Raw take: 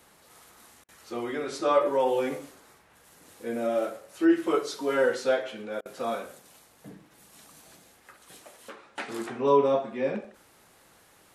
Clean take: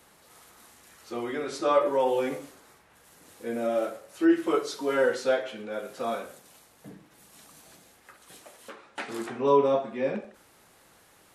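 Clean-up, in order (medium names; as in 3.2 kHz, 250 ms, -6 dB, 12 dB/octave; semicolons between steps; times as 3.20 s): interpolate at 0.84/5.81 s, 45 ms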